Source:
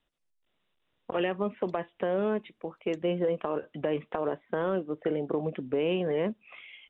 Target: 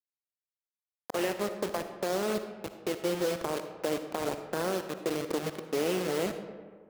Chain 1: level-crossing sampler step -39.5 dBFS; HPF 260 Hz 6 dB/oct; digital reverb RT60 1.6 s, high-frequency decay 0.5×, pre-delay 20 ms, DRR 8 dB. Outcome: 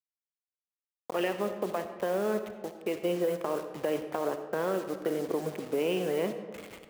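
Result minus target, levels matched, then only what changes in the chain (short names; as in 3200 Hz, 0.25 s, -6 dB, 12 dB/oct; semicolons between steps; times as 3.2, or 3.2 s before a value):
level-crossing sampler: distortion -12 dB
change: level-crossing sampler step -28 dBFS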